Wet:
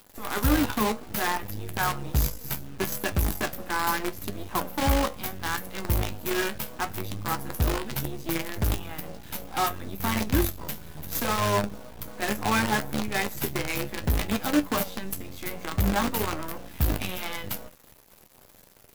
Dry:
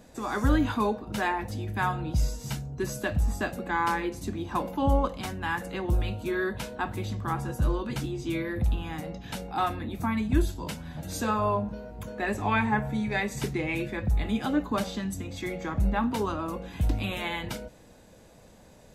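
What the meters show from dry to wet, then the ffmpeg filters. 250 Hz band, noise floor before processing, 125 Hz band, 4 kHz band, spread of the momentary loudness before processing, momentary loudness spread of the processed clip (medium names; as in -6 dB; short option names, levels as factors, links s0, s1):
-0.5 dB, -54 dBFS, -0.5 dB, +6.0 dB, 9 LU, 10 LU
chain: -af "aexciter=amount=14.4:drive=4.8:freq=12000,acrusher=bits=5:dc=4:mix=0:aa=0.000001,flanger=delay=9.9:depth=4.3:regen=52:speed=0.69:shape=sinusoidal,volume=1.68"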